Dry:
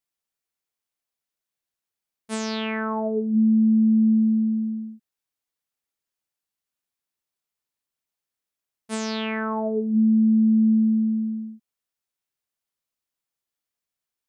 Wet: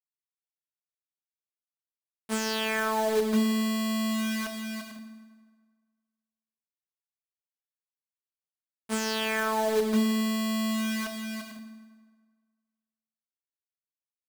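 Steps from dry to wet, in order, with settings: dynamic EQ 190 Hz, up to -3 dB, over -27 dBFS, Q 1.1; companded quantiser 4-bit; on a send: reverb RT60 1.6 s, pre-delay 4 ms, DRR 6.5 dB

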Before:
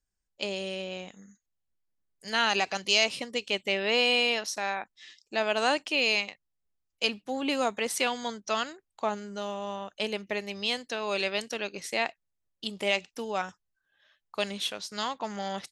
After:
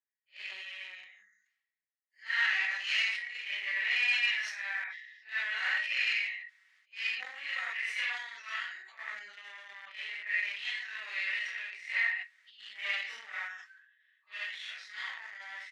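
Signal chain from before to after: phase scrambler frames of 0.2 s; comb 5.3 ms, depth 45%; added harmonics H 6 -14 dB, 8 -26 dB, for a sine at -12 dBFS; in parallel at -8 dB: bit-crush 5-bit; on the sum: ladder band-pass 2000 Hz, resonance 80%; sustainer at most 60 dB/s

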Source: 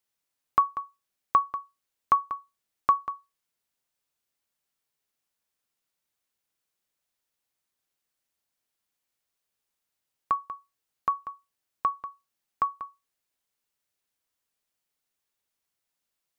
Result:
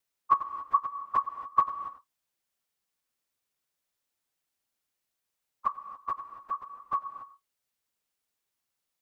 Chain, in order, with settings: local time reversal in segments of 30 ms; plain phase-vocoder stretch 0.55×; non-linear reverb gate 0.3 s rising, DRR 11 dB; gain +3 dB

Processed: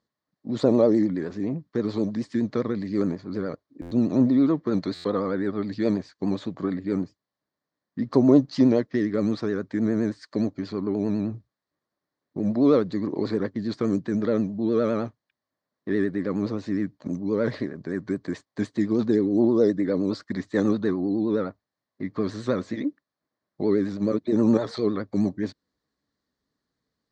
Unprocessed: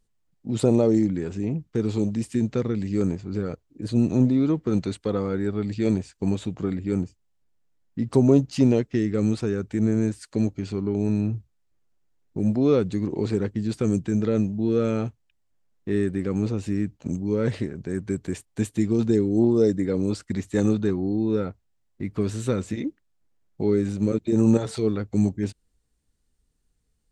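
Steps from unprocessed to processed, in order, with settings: vibrato 9.6 Hz 90 cents; speaker cabinet 150–5600 Hz, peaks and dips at 280 Hz +5 dB, 600 Hz +7 dB, 1100 Hz +9 dB, 1800 Hz +7 dB, 2700 Hz -9 dB, 4300 Hz +6 dB; stuck buffer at 3.81/4.94, samples 512, times 8; gain -2 dB

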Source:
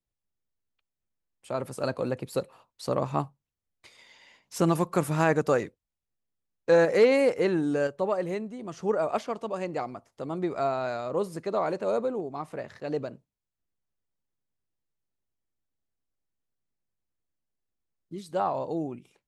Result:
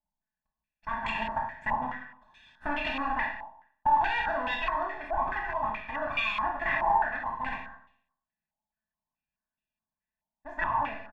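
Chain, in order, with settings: minimum comb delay 8 ms; bell 530 Hz -2.5 dB; comb 2 ms, depth 85%; compressor 6:1, threshold -26 dBFS, peak gain reduction 12.5 dB; speakerphone echo 0.31 s, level -18 dB; wow and flutter 16 cents; Schroeder reverb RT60 1.1 s, combs from 32 ms, DRR -0.5 dB; speed mistake 45 rpm record played at 78 rpm; stepped low-pass 4.7 Hz 890–2800 Hz; gain -5.5 dB

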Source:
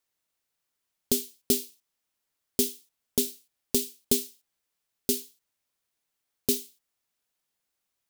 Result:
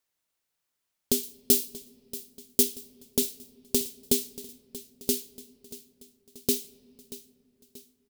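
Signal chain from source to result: 1.23–2.63 high shelf 6000 Hz +5.5 dB; feedback echo 0.633 s, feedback 50%, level -17 dB; on a send at -22 dB: reverb RT60 3.5 s, pre-delay 3 ms

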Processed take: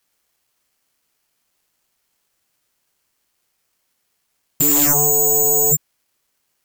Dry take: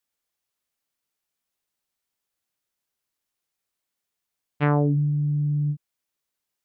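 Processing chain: careless resampling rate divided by 6×, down filtered, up zero stuff; sine folder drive 5 dB, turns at -9.5 dBFS; gain +5 dB

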